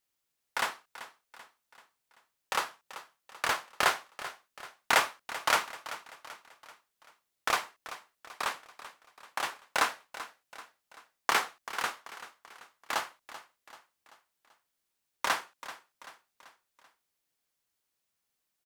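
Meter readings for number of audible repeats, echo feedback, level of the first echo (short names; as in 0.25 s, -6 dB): 4, 48%, -14.5 dB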